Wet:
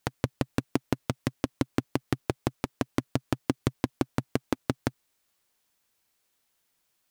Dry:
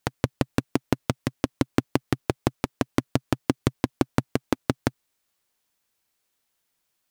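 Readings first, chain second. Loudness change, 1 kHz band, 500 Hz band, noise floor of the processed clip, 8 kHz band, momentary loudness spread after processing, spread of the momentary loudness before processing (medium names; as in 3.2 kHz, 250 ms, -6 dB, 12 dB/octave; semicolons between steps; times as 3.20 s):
-4.0 dB, -4.5 dB, -4.5 dB, -75 dBFS, -4.5 dB, 3 LU, 4 LU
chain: peak limiter -10.5 dBFS, peak gain reduction 8 dB; trim +1.5 dB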